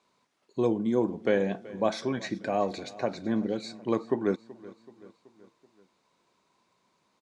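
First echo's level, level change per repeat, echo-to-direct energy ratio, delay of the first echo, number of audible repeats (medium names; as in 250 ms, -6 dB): -19.5 dB, -5.0 dB, -18.0 dB, 379 ms, 3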